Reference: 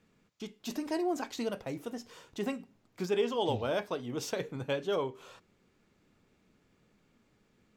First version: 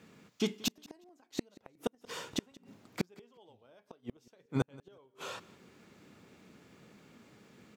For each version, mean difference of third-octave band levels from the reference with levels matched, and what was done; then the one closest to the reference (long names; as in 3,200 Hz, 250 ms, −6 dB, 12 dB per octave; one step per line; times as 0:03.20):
14.0 dB: high-pass filter 110 Hz 12 dB per octave
gate with flip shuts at −29 dBFS, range −40 dB
on a send: repeating echo 180 ms, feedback 15%, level −22 dB
on the sum: level +11 dB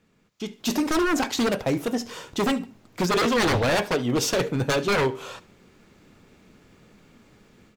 6.0 dB: automatic gain control gain up to 11 dB
wave folding −20 dBFS
on a send: repeating echo 72 ms, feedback 30%, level −20 dB
on the sum: level +3.5 dB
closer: second